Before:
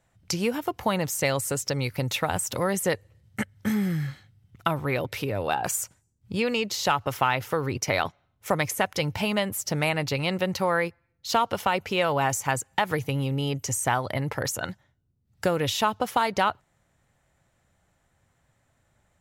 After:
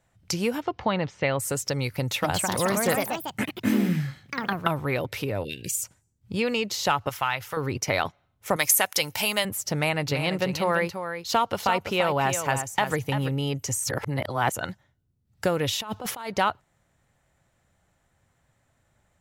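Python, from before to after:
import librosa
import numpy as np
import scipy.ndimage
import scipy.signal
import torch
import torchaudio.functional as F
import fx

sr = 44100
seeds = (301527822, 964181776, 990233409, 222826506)

y = fx.lowpass(x, sr, hz=fx.line((0.6, 5700.0), (1.39, 3000.0)), slope=24, at=(0.6, 1.39), fade=0.02)
y = fx.echo_pitch(y, sr, ms=252, semitones=3, count=3, db_per_echo=-3.0, at=(1.97, 4.88))
y = fx.cheby2_bandstop(y, sr, low_hz=690.0, high_hz=1400.0, order=4, stop_db=50, at=(5.43, 5.83), fade=0.02)
y = fx.peak_eq(y, sr, hz=280.0, db=-12.5, octaves=2.4, at=(7.09, 7.57))
y = fx.riaa(y, sr, side='recording', at=(8.56, 9.45))
y = fx.echo_single(y, sr, ms=339, db=-8.5, at=(10.08, 13.28), fade=0.02)
y = fx.over_compress(y, sr, threshold_db=-33.0, ratio=-1.0, at=(15.73, 16.3))
y = fx.edit(y, sr, fx.reverse_span(start_s=13.84, length_s=0.68), tone=tone)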